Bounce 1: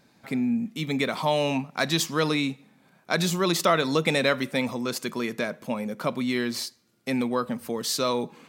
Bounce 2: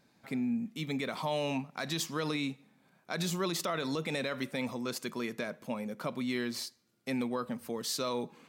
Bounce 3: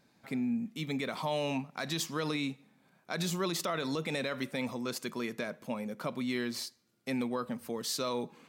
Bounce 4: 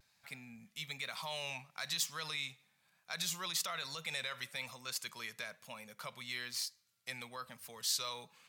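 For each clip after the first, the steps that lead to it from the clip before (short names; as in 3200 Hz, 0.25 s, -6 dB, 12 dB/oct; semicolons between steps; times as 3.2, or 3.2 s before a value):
limiter -16 dBFS, peak gain reduction 8 dB; gain -7 dB
nothing audible
passive tone stack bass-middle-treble 10-0-10; vibrato 1.1 Hz 49 cents; gain +2 dB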